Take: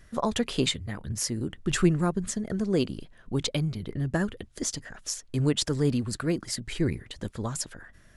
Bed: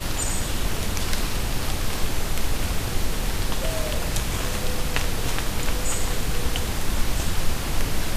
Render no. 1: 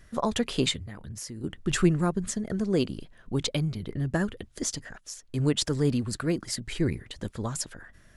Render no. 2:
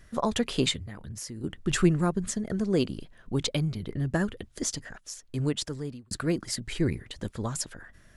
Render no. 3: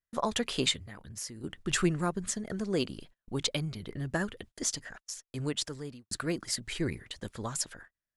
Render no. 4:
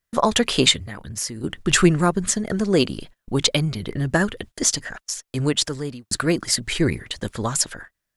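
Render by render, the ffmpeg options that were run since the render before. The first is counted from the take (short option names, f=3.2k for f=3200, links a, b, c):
-filter_complex "[0:a]asettb=1/sr,asplit=3[a][b][c];[a]atrim=end=0.834[d];[b]atrim=start=0.83:end=1.44,asetpts=PTS-STARTPTS,afade=t=in:d=0.004:c=qsin,afade=t=out:st=0.606:d=0.004:c=qsin,acompressor=threshold=-39dB:ratio=2.5:attack=3.2:release=140:knee=1:detection=peak[e];[c]atrim=start=1.436[f];[d][e]acrossfade=d=0.004:c1=hsin:c2=qsin[g];[g][f]acrossfade=d=0.004:c1=qsin:c2=hsin,asplit=2[h][i];[h]atrim=end=4.98,asetpts=PTS-STARTPTS,afade=t=out:st=4.976:d=0.004:c=hsin:silence=0.199526[j];[i]atrim=start=4.98,asetpts=PTS-STARTPTS,afade=t=in:d=0.5:silence=0.199526[k];[j][k]concat=n=2:v=0:a=1"
-filter_complex "[0:a]asplit=2[a][b];[a]atrim=end=6.11,asetpts=PTS-STARTPTS,afade=t=out:st=5.2:d=0.91[c];[b]atrim=start=6.11,asetpts=PTS-STARTPTS,afade=t=in:d=0.004:c=hsin[d];[c][d]concat=n=2:v=0:a=1"
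-af "agate=range=-36dB:threshold=-44dB:ratio=16:detection=peak,lowshelf=f=500:g=-7.5"
-af "volume=12dB"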